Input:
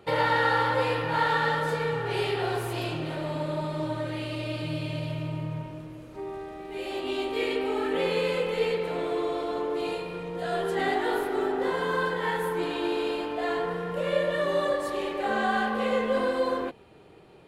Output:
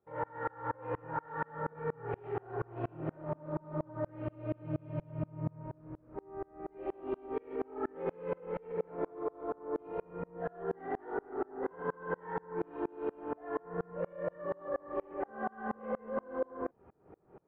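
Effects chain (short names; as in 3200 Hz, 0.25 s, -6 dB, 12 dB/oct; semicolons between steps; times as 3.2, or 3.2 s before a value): LPF 1500 Hz 24 dB/oct; limiter -25 dBFS, peak gain reduction 11 dB; dB-ramp tremolo swelling 4.2 Hz, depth 32 dB; gain +2.5 dB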